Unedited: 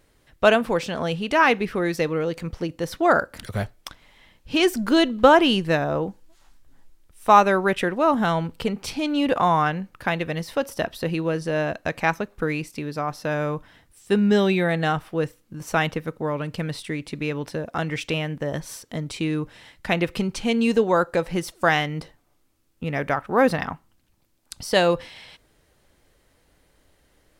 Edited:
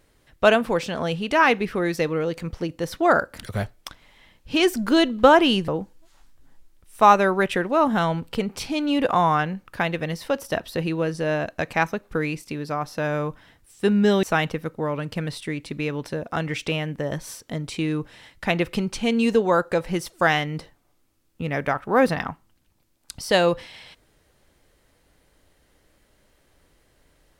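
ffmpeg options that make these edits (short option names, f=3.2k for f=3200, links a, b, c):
-filter_complex "[0:a]asplit=3[a][b][c];[a]atrim=end=5.682[d];[b]atrim=start=5.948:end=14.502[e];[c]atrim=start=15.648[f];[d][e]acrossfade=d=0.004:c1=hsin:c2=hsin[g];[g][f]acrossfade=d=0.004:c1=hsin:c2=hsin"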